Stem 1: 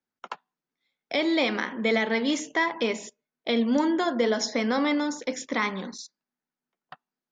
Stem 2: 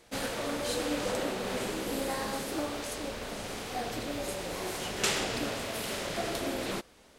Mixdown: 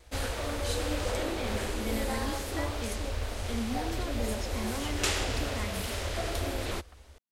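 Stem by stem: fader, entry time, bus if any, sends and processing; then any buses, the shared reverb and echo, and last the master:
-16.5 dB, 0.00 s, no send, peaking EQ 200 Hz +10 dB 0.66 oct
-0.5 dB, 0.00 s, no send, resonant low shelf 110 Hz +12.5 dB, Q 3; wow and flutter 28 cents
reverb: none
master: none

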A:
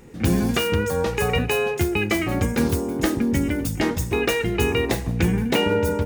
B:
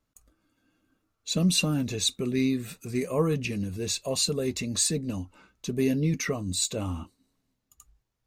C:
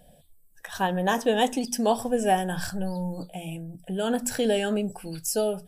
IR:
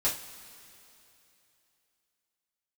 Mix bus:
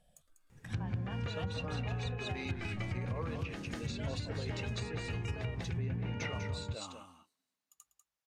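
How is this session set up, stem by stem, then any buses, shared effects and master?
-12.0 dB, 0.50 s, no send, echo send -5.5 dB, peaking EQ 120 Hz +12.5 dB 0.93 oct; auto duck -8 dB, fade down 1.30 s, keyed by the second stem
-5.5 dB, 0.00 s, no send, echo send -8.5 dB, Bessel high-pass 370 Hz, order 2
-12.0 dB, 0.00 s, no send, no echo send, low-pass 9.4 kHz; compression, threshold -27 dBFS, peak gain reduction 10 dB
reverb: none
echo: delay 195 ms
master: peaking EQ 330 Hz -9 dB 1.7 oct; low-pass that closes with the level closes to 1.8 kHz, closed at -28 dBFS; compression 4:1, threshold -33 dBFS, peak gain reduction 7.5 dB

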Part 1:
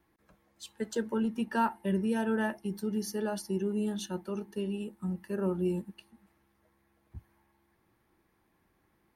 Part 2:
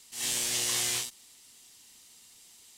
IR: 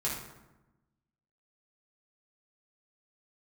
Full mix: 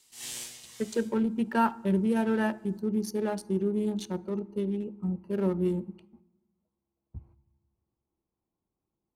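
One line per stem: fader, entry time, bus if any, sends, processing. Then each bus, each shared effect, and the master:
+3.0 dB, 0.00 s, send -22 dB, local Wiener filter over 25 samples; gate -59 dBFS, range -17 dB
-8.5 dB, 0.00 s, send -19.5 dB, auto duck -19 dB, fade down 0.20 s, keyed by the first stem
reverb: on, RT60 1.0 s, pre-delay 3 ms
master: none

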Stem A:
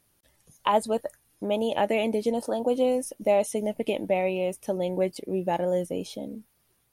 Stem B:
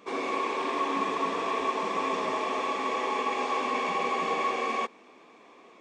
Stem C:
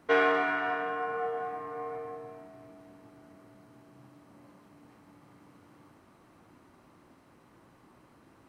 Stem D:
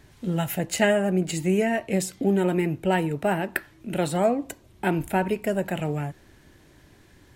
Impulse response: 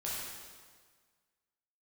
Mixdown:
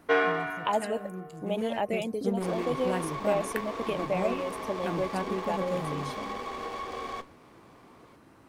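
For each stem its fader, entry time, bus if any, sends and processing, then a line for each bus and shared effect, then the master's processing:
-5.0 dB, 0.00 s, no send, reverb removal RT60 0.78 s
+1.0 dB, 2.35 s, no send, compression, threshold -29 dBFS, peak gain reduction 6 dB; flange 0.7 Hz, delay 8.1 ms, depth 4.7 ms, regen -69%; sliding maximum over 9 samples
+3.0 dB, 0.00 s, no send, auto duck -18 dB, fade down 1.10 s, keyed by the first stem
1.31 s -12 dB -> 1.83 s -4 dB, 0.00 s, no send, local Wiener filter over 41 samples; flange 0.51 Hz, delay 7.7 ms, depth 9.5 ms, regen -67%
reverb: none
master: none

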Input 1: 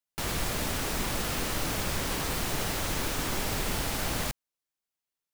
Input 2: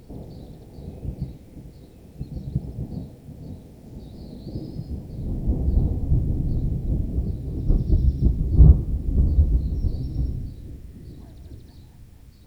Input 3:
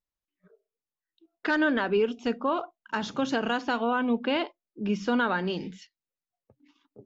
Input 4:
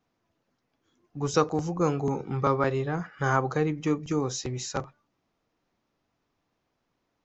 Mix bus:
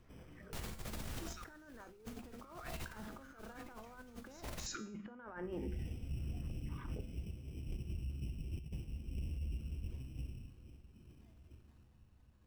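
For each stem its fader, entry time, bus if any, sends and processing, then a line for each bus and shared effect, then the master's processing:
-7.5 dB, 0.35 s, no send, bass shelf 200 Hz +9.5 dB; gain riding 2 s
-19.0 dB, 0.00 s, no send, sample-and-hold 16×
-1.0 dB, 0.00 s, no send, low-pass 1.9 kHz 24 dB/octave; peaking EQ 150 Hz -10 dB 0.59 oct; swell ahead of each attack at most 29 dB/s
+1.0 dB, 0.00 s, no send, elliptic high-pass 1.3 kHz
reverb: none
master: compressor with a negative ratio -35 dBFS, ratio -0.5; feedback comb 72 Hz, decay 0.5 s, harmonics odd, mix 60%; peak limiter -33.5 dBFS, peak gain reduction 8.5 dB

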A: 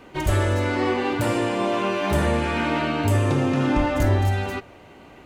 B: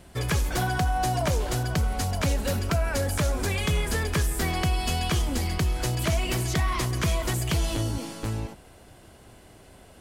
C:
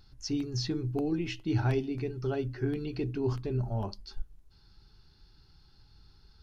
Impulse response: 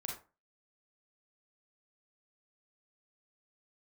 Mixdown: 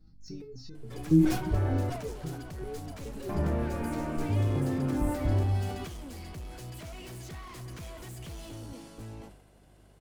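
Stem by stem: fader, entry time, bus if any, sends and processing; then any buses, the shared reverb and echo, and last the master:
-15.5 dB, 1.25 s, muted 1.90–3.29 s, no send, low-pass 1.7 kHz
-13.0 dB, 0.75 s, no send, bass shelf 180 Hz -11.5 dB; hard clipper -33 dBFS, distortion -7 dB
-0.5 dB, 0.00 s, no send, de-esser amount 80%; graphic EQ with 31 bands 160 Hz +11 dB, 315 Hz +6 dB, 3.15 kHz -11 dB; resonator arpeggio 7.2 Hz 160–510 Hz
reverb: none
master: bass shelf 460 Hz +9.5 dB; hum 50 Hz, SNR 29 dB; decay stretcher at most 70 dB/s

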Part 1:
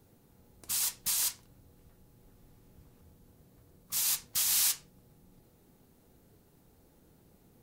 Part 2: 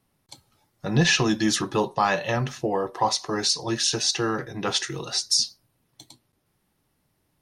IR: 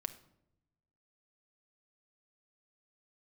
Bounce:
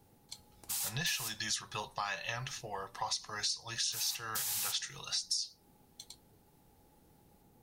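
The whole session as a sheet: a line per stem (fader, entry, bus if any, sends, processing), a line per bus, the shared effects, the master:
-3.0 dB, 0.00 s, no send, peaking EQ 830 Hz +11.5 dB 0.2 oct
-1.0 dB, 0.00 s, no send, amplifier tone stack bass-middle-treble 10-0-10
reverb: none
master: compression 5:1, threshold -33 dBFS, peak gain reduction 13 dB

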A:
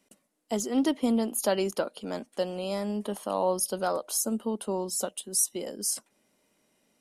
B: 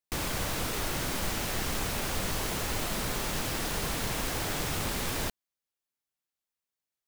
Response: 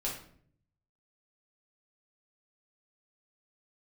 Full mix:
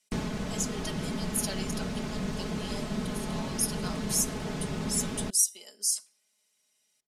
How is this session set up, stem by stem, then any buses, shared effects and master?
+0.5 dB, 0.00 s, send -16 dB, band-pass filter 6.8 kHz, Q 0.77
-2.5 dB, 0.00 s, no send, low-pass 6.9 kHz 12 dB/octave; peaking EQ 180 Hz +14 dB 2.7 oct; auto duck -7 dB, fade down 0.30 s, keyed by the first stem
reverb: on, RT60 0.60 s, pre-delay 5 ms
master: comb 4.7 ms

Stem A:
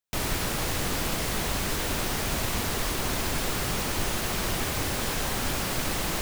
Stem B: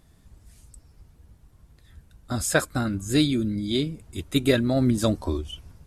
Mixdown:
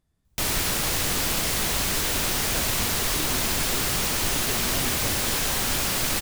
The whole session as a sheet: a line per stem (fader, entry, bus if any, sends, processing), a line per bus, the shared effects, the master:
0.0 dB, 0.25 s, no send, treble shelf 2.1 kHz +7.5 dB
-16.5 dB, 0.00 s, no send, none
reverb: none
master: none

